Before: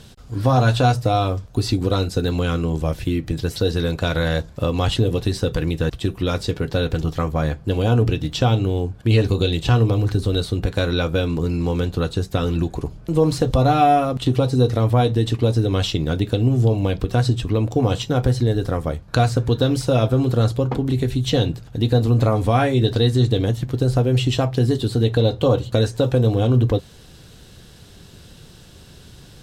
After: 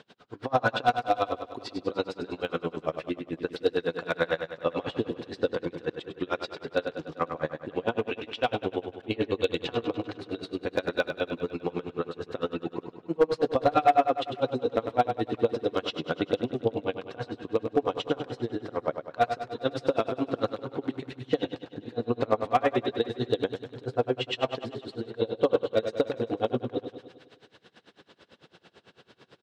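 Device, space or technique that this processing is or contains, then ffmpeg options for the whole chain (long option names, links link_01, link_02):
helicopter radio: -filter_complex "[0:a]highpass=350,lowpass=2700,aeval=exprs='val(0)*pow(10,-33*(0.5-0.5*cos(2*PI*9*n/s))/20)':channel_layout=same,asoftclip=type=hard:threshold=-14.5dB,asettb=1/sr,asplit=3[link_01][link_02][link_03];[link_01]atrim=end=7.954[link_04];[link_02]atrim=start=7.95:end=8.51,asetpts=PTS-STARTPTS,afade=type=in:duration=0.004:curve=qsin,afade=type=out:start_time=0.556:duration=0.004:curve=qsin,equalizer=frequency=160:width_type=o:width=0.67:gain=-11,equalizer=frequency=400:width_type=o:width=0.67:gain=-5,equalizer=frequency=2500:width_type=o:width=0.67:gain=8[link_05];[link_03]atrim=start=8.506[link_06];[link_04][link_05]acrossfade=duration=0.004:curve1=hsin:curve2=qsin[link_07];[link_07][link_06]acrossfade=duration=0.004:curve1=qsin:curve2=hsin,aecho=1:1:100|200|300|400|500|600|700:0.398|0.219|0.12|0.0662|0.0364|0.02|0.011,volume=1.5dB"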